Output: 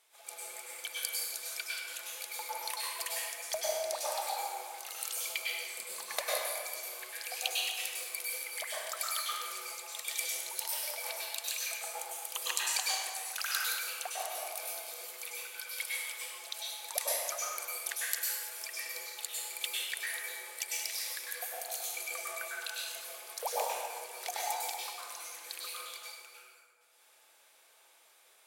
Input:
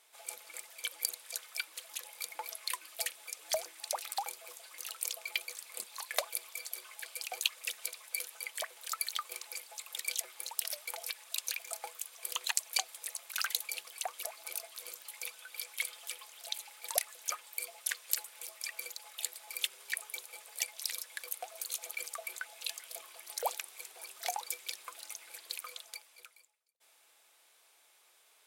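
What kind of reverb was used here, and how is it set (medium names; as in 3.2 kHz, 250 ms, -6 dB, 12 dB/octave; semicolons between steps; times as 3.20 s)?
plate-style reverb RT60 1.8 s, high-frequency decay 0.55×, pre-delay 90 ms, DRR -6.5 dB; trim -3.5 dB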